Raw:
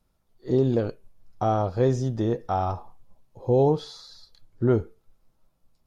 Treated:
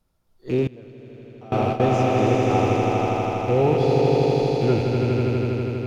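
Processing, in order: rattle on loud lows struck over -37 dBFS, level -28 dBFS; echo with a slow build-up 81 ms, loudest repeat 5, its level -4 dB; 0.67–1.80 s: gate with hold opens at -11 dBFS

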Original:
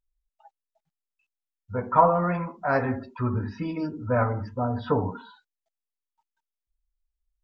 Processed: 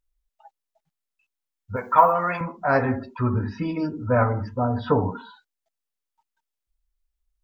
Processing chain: 1.76–2.41 s: tilt EQ +4.5 dB/octave; trim +3.5 dB

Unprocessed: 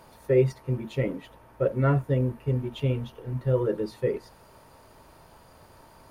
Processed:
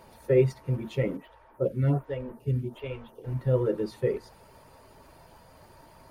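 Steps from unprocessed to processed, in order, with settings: coarse spectral quantiser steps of 15 dB; 1.17–3.24 s: lamp-driven phase shifter 1.3 Hz

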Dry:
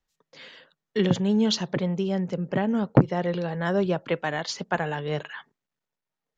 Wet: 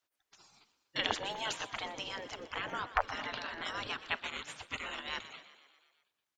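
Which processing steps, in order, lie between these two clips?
spectral gate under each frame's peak -20 dB weak; frequency-shifting echo 121 ms, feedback 64%, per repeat +51 Hz, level -14.5 dB; trim +3 dB

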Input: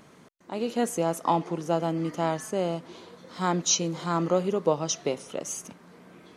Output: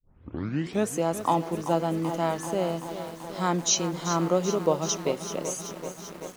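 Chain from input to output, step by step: tape start-up on the opening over 0.91 s; bit-crushed delay 385 ms, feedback 80%, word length 7-bit, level -11 dB

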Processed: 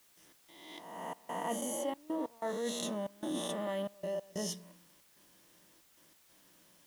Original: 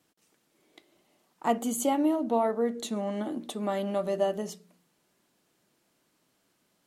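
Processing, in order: reverse spectral sustain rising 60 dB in 1.27 s; rippled EQ curve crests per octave 1.2, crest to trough 8 dB; reverse; compression 8:1, threshold -33 dBFS, peak gain reduction 16 dB; reverse; trance gate ".x.xxxx.xxxx" 93 bpm -24 dB; added noise white -66 dBFS

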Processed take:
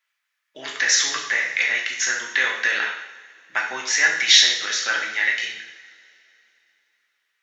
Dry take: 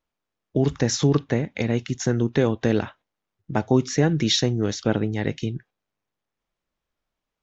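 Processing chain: resonant high-pass 1.8 kHz, resonance Q 2.8; two-slope reverb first 0.77 s, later 3.1 s, from -21 dB, DRR -1.5 dB; trim +5 dB

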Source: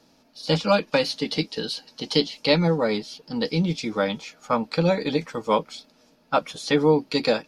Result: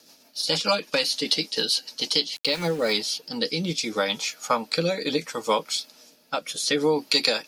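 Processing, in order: RIAA curve recording; compression 10:1, threshold -21 dBFS, peak gain reduction 10 dB; 2.36–2.93 s: small samples zeroed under -37 dBFS; rotary cabinet horn 6.7 Hz, later 0.7 Hz, at 2.12 s; trim +5 dB

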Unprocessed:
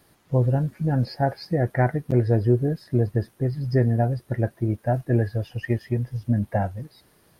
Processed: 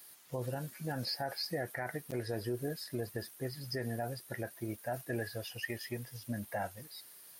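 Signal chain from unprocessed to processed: tilt EQ +4.5 dB/octave; peak limiter -22 dBFS, peak gain reduction 11 dB; trim -5 dB

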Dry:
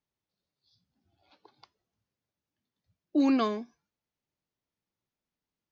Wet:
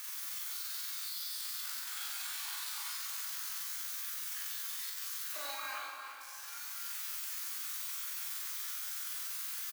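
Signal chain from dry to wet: zero-crossing glitches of -31 dBFS; high-pass 1 kHz 24 dB/octave; peaking EQ 1.3 kHz +10 dB 1.2 oct; level held to a coarse grid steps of 24 dB; slow attack 658 ms; granular stretch 1.7×, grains 94 ms; doubling 41 ms -3 dB; delay 345 ms -9.5 dB; plate-style reverb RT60 2.2 s, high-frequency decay 0.85×, DRR 0 dB; trim +4 dB

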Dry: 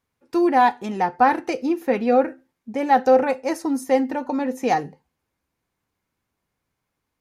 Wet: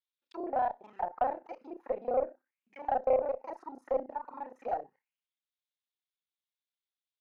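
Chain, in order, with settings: time reversed locally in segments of 31 ms; auto-wah 610–3600 Hz, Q 4.9, down, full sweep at -18 dBFS; Chebyshev shaper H 4 -26 dB, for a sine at -11.5 dBFS; trim -5 dB

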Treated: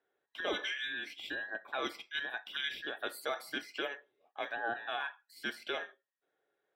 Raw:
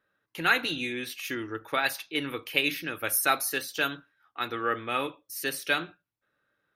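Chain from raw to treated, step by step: every band turned upside down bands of 2 kHz; three-band isolator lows -19 dB, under 240 Hz, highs -20 dB, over 4.3 kHz; peak limiter -20 dBFS, peak gain reduction 10.5 dB; trim -5 dB

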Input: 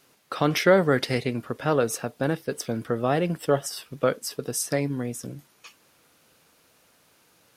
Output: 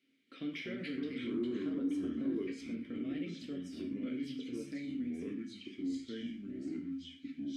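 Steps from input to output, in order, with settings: ever faster or slower copies 137 ms, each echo -4 st, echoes 3; vowel filter i; peak limiter -30.5 dBFS, peak gain reduction 11.5 dB; 1.27–2.43 s: fifteen-band graphic EQ 400 Hz +7 dB, 1 kHz +9 dB, 2.5 kHz -11 dB, 10 kHz +5 dB; gated-style reverb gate 160 ms falling, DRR 2 dB; trim -3.5 dB

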